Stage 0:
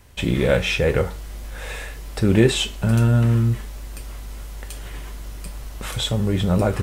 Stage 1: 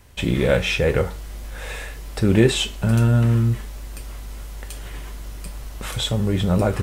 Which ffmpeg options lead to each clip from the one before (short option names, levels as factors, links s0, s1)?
-af anull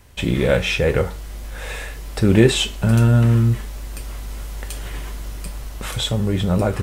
-af "dynaudnorm=f=240:g=13:m=1.58,volume=1.12"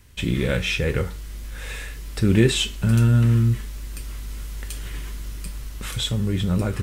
-af "equalizer=f=700:t=o:w=1.2:g=-10.5,volume=0.794"